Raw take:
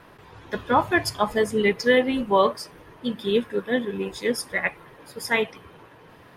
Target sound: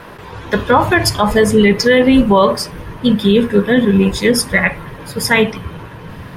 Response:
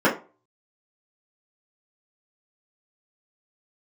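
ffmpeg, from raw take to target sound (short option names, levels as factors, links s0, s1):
-filter_complex "[0:a]asubboost=boost=4.5:cutoff=190,asplit=2[s0][s1];[1:a]atrim=start_sample=2205[s2];[s1][s2]afir=irnorm=-1:irlink=0,volume=0.0282[s3];[s0][s3]amix=inputs=2:normalize=0,alimiter=level_in=5.62:limit=0.891:release=50:level=0:latency=1,volume=0.891"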